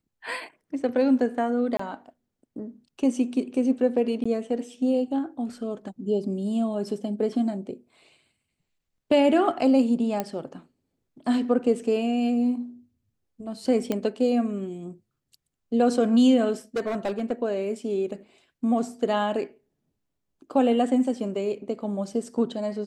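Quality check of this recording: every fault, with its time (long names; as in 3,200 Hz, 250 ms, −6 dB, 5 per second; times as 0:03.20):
0:01.77–0:01.79: drop-out 24 ms
0:04.24–0:04.25: drop-out 15 ms
0:10.20: click −13 dBFS
0:13.92: click −13 dBFS
0:16.76–0:17.32: clipping −22.5 dBFS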